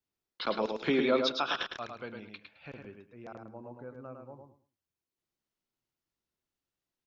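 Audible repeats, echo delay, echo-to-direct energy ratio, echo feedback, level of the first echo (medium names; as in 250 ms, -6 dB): 3, 107 ms, -5.0 dB, 20%, -5.0 dB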